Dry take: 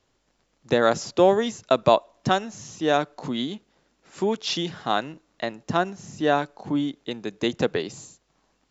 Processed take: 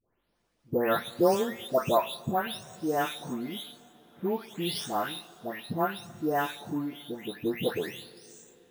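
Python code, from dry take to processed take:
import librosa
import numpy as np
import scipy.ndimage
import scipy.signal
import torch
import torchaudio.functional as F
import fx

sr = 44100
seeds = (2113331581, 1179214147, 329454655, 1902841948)

y = fx.spec_delay(x, sr, highs='late', ms=439)
y = np.repeat(scipy.signal.resample_poly(y, 1, 3), 3)[:len(y)]
y = fx.rev_double_slope(y, sr, seeds[0], early_s=0.29, late_s=4.4, knee_db=-18, drr_db=11.5)
y = y * 10.0 ** (-5.0 / 20.0)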